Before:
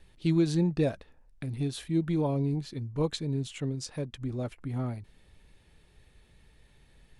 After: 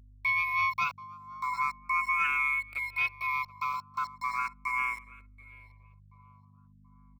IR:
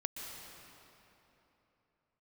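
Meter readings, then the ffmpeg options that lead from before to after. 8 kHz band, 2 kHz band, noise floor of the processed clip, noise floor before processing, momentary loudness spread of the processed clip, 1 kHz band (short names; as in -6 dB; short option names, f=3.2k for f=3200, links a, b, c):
n/a, +21.0 dB, -58 dBFS, -61 dBFS, 9 LU, +15.5 dB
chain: -filter_complex "[0:a]afftfilt=real='real(if(lt(b,272),68*(eq(floor(b/68),0)*3+eq(floor(b/68),1)*0+eq(floor(b/68),2)*1+eq(floor(b/68),3)*2)+mod(b,68),b),0)':imag='imag(if(lt(b,272),68*(eq(floor(b/68),0)*3+eq(floor(b/68),1)*0+eq(floor(b/68),2)*1+eq(floor(b/68),3)*2)+mod(b,68),b),0)':win_size=2048:overlap=0.75,highpass=290,equalizer=f=300:t=q:w=4:g=-3,equalizer=f=1.8k:t=q:w=4:g=8,equalizer=f=5.1k:t=q:w=4:g=-9,lowpass=f=8k:w=0.5412,lowpass=f=8k:w=1.3066,anlmdn=63.1,aecho=1:1:3.1:0.78,asplit=2[a][b];[b]acompressor=threshold=-28dB:ratio=10,volume=2.5dB[c];[a][c]amix=inputs=2:normalize=0,aeval=exprs='val(0)*gte(abs(val(0)),0.0376)':c=same,aeval=exprs='val(0)*sin(2*PI*580*n/s)':c=same,aeval=exprs='val(0)+0.00447*(sin(2*PI*50*n/s)+sin(2*PI*2*50*n/s)/2+sin(2*PI*3*50*n/s)/3+sin(2*PI*4*50*n/s)/4+sin(2*PI*5*50*n/s)/5)':c=same,asoftclip=type=tanh:threshold=-10dB,asplit=2[d][e];[e]adelay=731,lowpass=f=1.1k:p=1,volume=-15.5dB,asplit=2[f][g];[g]adelay=731,lowpass=f=1.1k:p=1,volume=0.46,asplit=2[h][i];[i]adelay=731,lowpass=f=1.1k:p=1,volume=0.46,asplit=2[j][k];[k]adelay=731,lowpass=f=1.1k:p=1,volume=0.46[l];[f][h][j][l]amix=inputs=4:normalize=0[m];[d][m]amix=inputs=2:normalize=0,acrossover=split=5100[n][o];[o]acompressor=threshold=-48dB:ratio=4:attack=1:release=60[p];[n][p]amix=inputs=2:normalize=0,asplit=2[q][r];[r]afreqshift=0.37[s];[q][s]amix=inputs=2:normalize=1,volume=-4.5dB"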